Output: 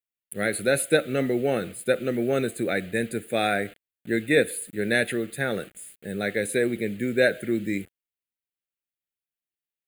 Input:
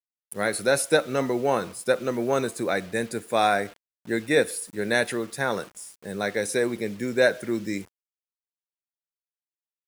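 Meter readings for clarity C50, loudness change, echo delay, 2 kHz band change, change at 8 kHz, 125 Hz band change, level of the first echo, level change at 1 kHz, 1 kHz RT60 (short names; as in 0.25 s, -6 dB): none, 0.0 dB, none, +0.5 dB, -1.5 dB, +3.0 dB, none, -6.0 dB, none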